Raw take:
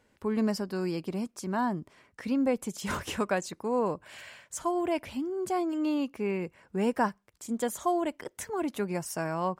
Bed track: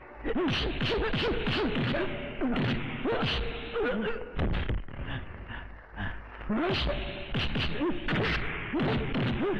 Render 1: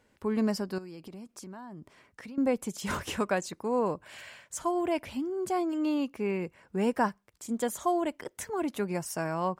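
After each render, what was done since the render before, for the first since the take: 0.78–2.38 s: compression 8:1, threshold -41 dBFS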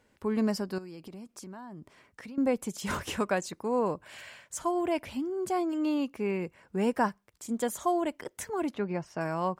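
8.74–9.21 s: distance through air 210 m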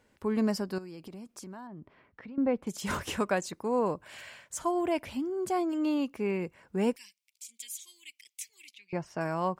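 1.67–2.67 s: distance through air 360 m; 6.96–8.93 s: elliptic high-pass 2.3 kHz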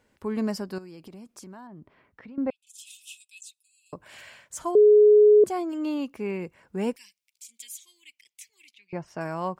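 2.50–3.93 s: rippled Chebyshev high-pass 2.5 kHz, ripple 9 dB; 4.75–5.44 s: bleep 420 Hz -11.5 dBFS; 7.79–9.08 s: treble shelf 3.7 kHz -6.5 dB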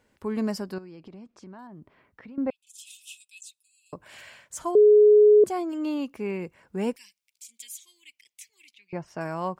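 0.74–1.59 s: distance through air 150 m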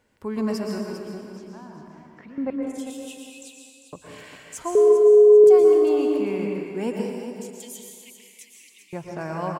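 feedback delay 398 ms, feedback 28%, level -10 dB; plate-style reverb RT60 1.6 s, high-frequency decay 0.75×, pre-delay 105 ms, DRR 0.5 dB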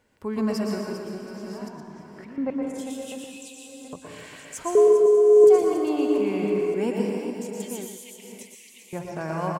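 chunks repeated in reverse 562 ms, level -8.5 dB; delay 118 ms -8.5 dB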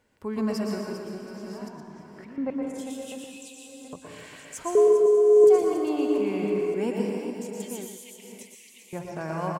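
trim -2 dB

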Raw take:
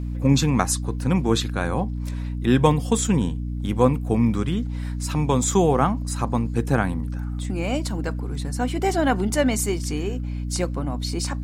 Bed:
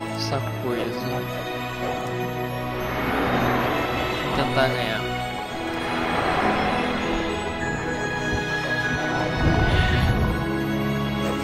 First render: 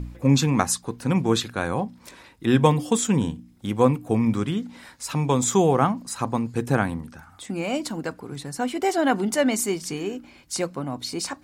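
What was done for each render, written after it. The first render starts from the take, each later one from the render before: de-hum 60 Hz, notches 5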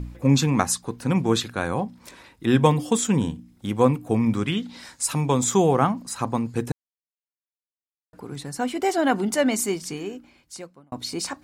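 4.46–5.20 s: peaking EQ 2.2 kHz -> 13 kHz +11.5 dB 0.9 oct; 6.72–8.13 s: mute; 9.69–10.92 s: fade out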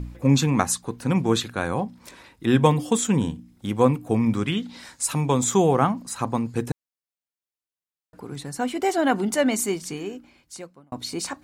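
dynamic bell 5.1 kHz, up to -4 dB, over -50 dBFS, Q 6.1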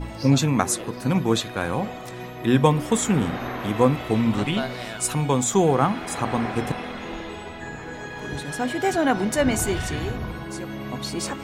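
add bed -9 dB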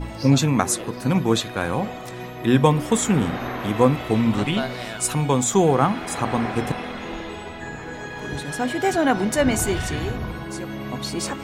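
trim +1.5 dB; peak limiter -2 dBFS, peak gain reduction 1 dB

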